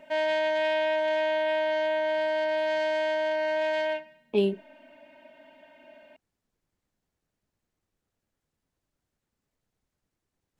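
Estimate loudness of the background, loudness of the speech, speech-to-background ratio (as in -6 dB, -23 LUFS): -27.0 LUFS, -28.0 LUFS, -1.0 dB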